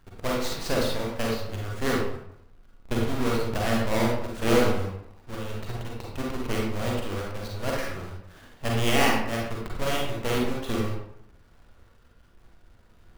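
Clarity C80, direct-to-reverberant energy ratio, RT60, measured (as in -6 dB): 5.0 dB, -3.0 dB, 0.70 s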